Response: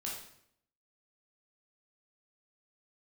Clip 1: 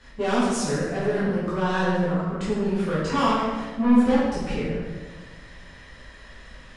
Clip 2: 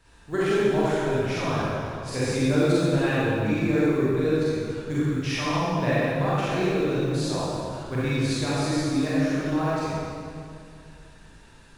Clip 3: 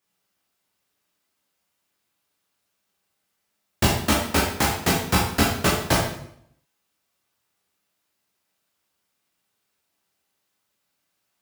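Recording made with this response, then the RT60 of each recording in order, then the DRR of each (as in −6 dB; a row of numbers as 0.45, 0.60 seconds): 3; 1.4, 2.4, 0.70 seconds; −10.5, −10.0, −4.0 decibels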